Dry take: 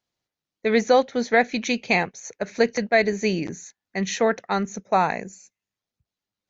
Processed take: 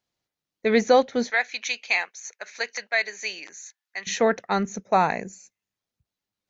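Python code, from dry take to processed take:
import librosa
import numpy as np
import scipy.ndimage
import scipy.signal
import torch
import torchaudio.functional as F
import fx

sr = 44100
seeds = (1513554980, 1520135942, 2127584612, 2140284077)

y = fx.highpass(x, sr, hz=1200.0, slope=12, at=(1.3, 4.07))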